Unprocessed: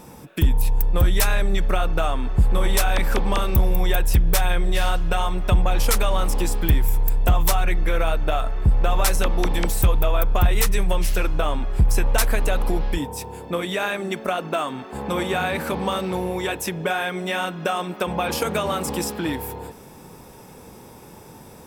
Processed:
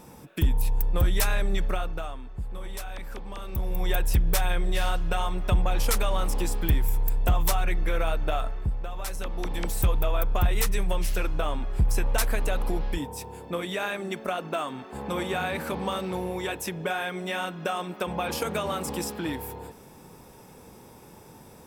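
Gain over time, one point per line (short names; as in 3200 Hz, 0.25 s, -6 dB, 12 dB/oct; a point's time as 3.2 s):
1.63 s -5 dB
2.29 s -17 dB
3.35 s -17 dB
3.92 s -5 dB
8.44 s -5 dB
8.91 s -16 dB
9.82 s -5.5 dB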